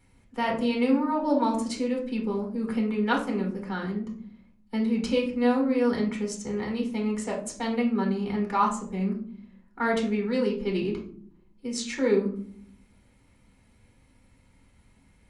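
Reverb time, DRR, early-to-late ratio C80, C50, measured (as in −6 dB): 0.55 s, −0.5 dB, 13.0 dB, 8.0 dB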